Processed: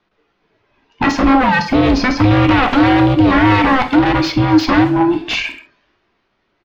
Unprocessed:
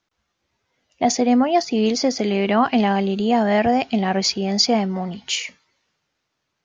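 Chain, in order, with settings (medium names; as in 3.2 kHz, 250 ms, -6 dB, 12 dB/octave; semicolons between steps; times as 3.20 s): every band turned upside down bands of 500 Hz; in parallel at +1 dB: peak limiter -12.5 dBFS, peak gain reduction 7 dB; on the sum: wavefolder -12.5 dBFS; distance through air 280 m; speakerphone echo 130 ms, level -14 dB; on a send at -7 dB: reverberation, pre-delay 3 ms; on the sum: trim +6 dB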